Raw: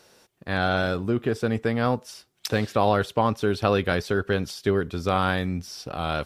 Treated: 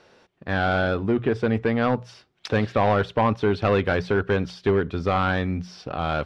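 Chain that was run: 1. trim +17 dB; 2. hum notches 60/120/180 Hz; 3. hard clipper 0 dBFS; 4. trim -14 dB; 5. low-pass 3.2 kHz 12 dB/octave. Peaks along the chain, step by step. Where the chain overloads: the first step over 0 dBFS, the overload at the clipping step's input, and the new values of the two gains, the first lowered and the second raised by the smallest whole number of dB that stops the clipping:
+10.0 dBFS, +10.0 dBFS, 0.0 dBFS, -14.0 dBFS, -13.5 dBFS; step 1, 10.0 dB; step 1 +7 dB, step 4 -4 dB

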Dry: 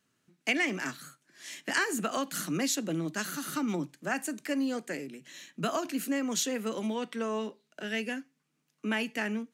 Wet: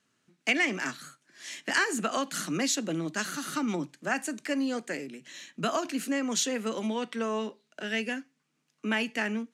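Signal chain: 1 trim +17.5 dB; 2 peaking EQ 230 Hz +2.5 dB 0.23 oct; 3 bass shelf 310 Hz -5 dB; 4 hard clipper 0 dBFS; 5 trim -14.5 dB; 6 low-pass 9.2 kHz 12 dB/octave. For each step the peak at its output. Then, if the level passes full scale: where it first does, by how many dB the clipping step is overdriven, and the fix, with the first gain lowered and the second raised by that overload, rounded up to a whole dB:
+4.5 dBFS, +4.5 dBFS, +4.5 dBFS, 0.0 dBFS, -14.5 dBFS, -14.0 dBFS; step 1, 4.5 dB; step 1 +12.5 dB, step 5 -9.5 dB

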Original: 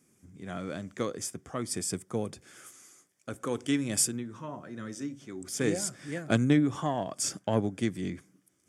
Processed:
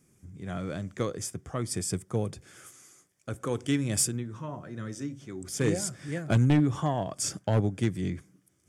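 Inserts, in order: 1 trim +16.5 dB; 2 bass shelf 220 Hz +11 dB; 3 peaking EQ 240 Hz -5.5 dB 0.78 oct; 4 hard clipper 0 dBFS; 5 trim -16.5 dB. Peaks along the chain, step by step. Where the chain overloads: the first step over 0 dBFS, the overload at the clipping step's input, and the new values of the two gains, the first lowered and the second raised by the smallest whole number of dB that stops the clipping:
+7.5 dBFS, +9.5 dBFS, +8.5 dBFS, 0.0 dBFS, -16.5 dBFS; step 1, 8.5 dB; step 1 +7.5 dB, step 5 -7.5 dB

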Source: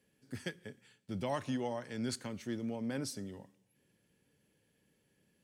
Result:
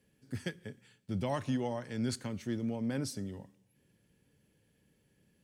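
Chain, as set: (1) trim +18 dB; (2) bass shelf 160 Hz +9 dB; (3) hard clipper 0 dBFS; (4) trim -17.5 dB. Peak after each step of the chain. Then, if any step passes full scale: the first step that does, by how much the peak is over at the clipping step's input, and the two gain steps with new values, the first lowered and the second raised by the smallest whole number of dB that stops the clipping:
-6.0 dBFS, -4.0 dBFS, -4.0 dBFS, -21.5 dBFS; nothing clips

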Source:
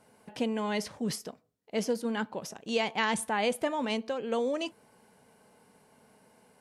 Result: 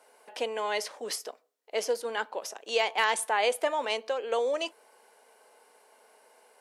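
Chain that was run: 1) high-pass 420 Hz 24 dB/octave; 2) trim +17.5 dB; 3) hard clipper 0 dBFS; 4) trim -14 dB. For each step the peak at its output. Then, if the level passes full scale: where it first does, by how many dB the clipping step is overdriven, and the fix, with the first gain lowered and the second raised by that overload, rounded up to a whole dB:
-14.5 dBFS, +3.0 dBFS, 0.0 dBFS, -14.0 dBFS; step 2, 3.0 dB; step 2 +14.5 dB, step 4 -11 dB

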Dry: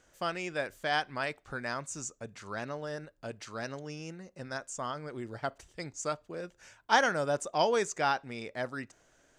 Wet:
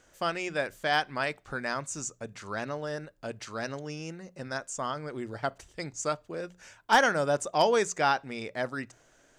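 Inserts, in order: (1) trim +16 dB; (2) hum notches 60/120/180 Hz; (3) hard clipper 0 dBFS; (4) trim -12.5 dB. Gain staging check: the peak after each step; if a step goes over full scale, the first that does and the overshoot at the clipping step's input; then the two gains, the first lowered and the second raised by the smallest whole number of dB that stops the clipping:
+6.5 dBFS, +6.5 dBFS, 0.0 dBFS, -12.5 dBFS; step 1, 6.5 dB; step 1 +9 dB, step 4 -5.5 dB

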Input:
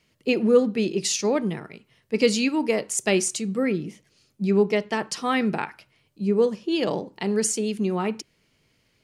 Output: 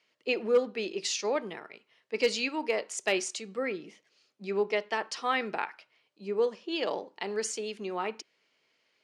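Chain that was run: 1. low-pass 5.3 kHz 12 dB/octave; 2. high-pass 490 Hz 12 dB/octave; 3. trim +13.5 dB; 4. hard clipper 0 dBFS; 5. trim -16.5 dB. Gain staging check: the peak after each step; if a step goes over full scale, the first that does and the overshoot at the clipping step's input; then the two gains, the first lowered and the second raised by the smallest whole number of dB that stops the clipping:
-6.0 dBFS, -8.5 dBFS, +5.0 dBFS, 0.0 dBFS, -16.5 dBFS; step 3, 5.0 dB; step 3 +8.5 dB, step 5 -11.5 dB

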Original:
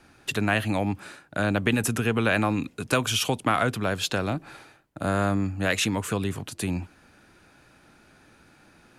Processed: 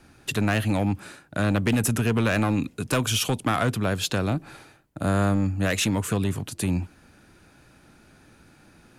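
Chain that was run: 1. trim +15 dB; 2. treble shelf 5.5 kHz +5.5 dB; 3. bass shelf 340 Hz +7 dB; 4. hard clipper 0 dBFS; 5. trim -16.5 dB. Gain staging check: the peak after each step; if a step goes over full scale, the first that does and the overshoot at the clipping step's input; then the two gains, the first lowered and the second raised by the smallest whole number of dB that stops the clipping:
+7.5 dBFS, +8.0 dBFS, +9.0 dBFS, 0.0 dBFS, -16.5 dBFS; step 1, 9.0 dB; step 1 +6 dB, step 5 -7.5 dB

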